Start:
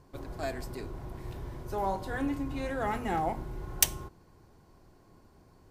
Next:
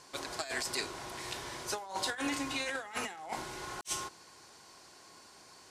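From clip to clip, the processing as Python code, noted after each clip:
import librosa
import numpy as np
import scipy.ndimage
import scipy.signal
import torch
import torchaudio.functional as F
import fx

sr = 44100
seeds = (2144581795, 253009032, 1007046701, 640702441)

y = fx.weighting(x, sr, curve='ITU-R 468')
y = fx.over_compress(y, sr, threshold_db=-39.0, ratio=-0.5)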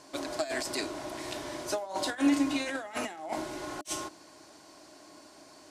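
y = fx.small_body(x, sr, hz=(300.0, 610.0), ring_ms=55, db=15)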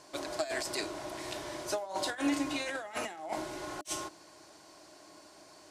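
y = fx.peak_eq(x, sr, hz=260.0, db=-10.5, octaves=0.21)
y = F.gain(torch.from_numpy(y), -1.5).numpy()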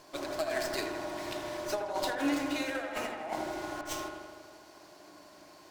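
y = fx.echo_wet_lowpass(x, sr, ms=80, feedback_pct=69, hz=2500.0, wet_db=-5)
y = fx.running_max(y, sr, window=3)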